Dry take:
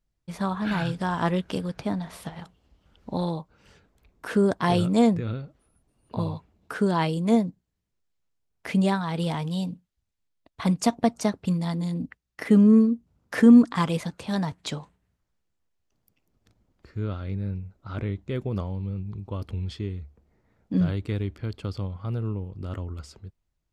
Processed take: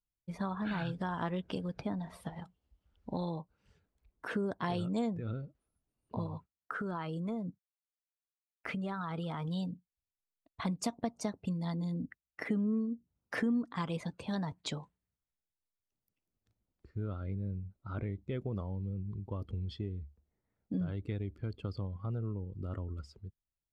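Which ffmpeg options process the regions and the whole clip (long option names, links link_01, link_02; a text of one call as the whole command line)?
ffmpeg -i in.wav -filter_complex "[0:a]asettb=1/sr,asplit=3[link_01][link_02][link_03];[link_01]atrim=end=6.264[link_04];[link_02]atrim=start=6.26:end=9.48,asetpts=PTS-STARTPTS,afade=type=in:duration=0.004:curve=qsin,afade=type=out:start_time=3.216:duration=0.004:curve=qsin,agate=range=-33dB:threshold=-50dB:ratio=3:release=100:detection=peak,equalizer=frequency=1300:width_type=o:width=0.35:gain=11,acompressor=threshold=-28dB:ratio=6:attack=3.2:release=140:knee=1:detection=peak[link_05];[link_03]atrim=start=9.476[link_06];[link_04][link_05]acrossfade=duration=0.004:curve1=hsin:curve2=qsin[link_07];[link_07][link_06]acrossfade=duration=0.004:curve1=qsin:curve2=hsin,afftdn=noise_reduction=13:noise_floor=-44,acompressor=threshold=-29dB:ratio=3,volume=-4.5dB" out.wav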